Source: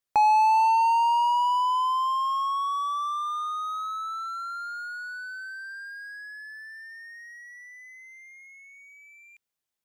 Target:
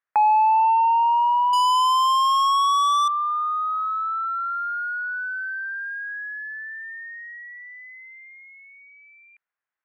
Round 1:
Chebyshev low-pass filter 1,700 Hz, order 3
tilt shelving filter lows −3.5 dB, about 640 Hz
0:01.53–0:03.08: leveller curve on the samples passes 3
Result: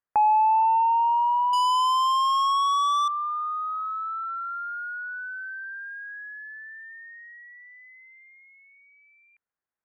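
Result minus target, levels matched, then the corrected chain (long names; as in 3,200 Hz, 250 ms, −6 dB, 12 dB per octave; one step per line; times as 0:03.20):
500 Hz band +3.0 dB
Chebyshev low-pass filter 1,700 Hz, order 3
tilt shelving filter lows −13.5 dB, about 640 Hz
0:01.53–0:03.08: leveller curve on the samples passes 3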